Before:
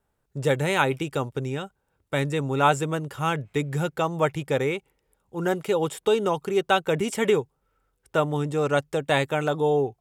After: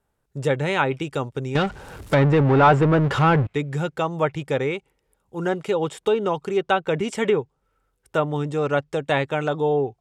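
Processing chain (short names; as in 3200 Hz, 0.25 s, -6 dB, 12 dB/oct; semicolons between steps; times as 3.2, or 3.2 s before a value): 1.55–3.47 power-law curve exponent 0.5; treble ducked by the level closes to 1900 Hz, closed at -15 dBFS; gain +1 dB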